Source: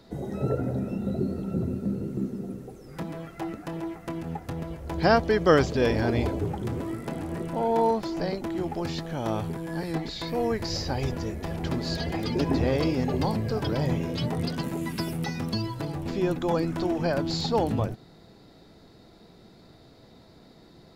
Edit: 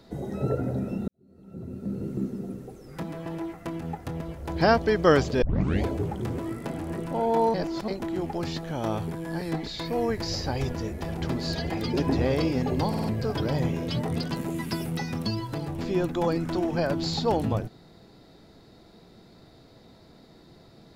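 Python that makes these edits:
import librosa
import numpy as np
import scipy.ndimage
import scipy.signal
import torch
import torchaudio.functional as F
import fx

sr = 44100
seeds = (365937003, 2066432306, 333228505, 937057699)

y = fx.edit(x, sr, fx.fade_in_span(start_s=1.08, length_s=0.98, curve='qua'),
    fx.cut(start_s=3.26, length_s=0.42),
    fx.tape_start(start_s=5.84, length_s=0.42),
    fx.reverse_span(start_s=7.96, length_s=0.34),
    fx.stutter(start_s=13.31, slice_s=0.05, count=4), tone=tone)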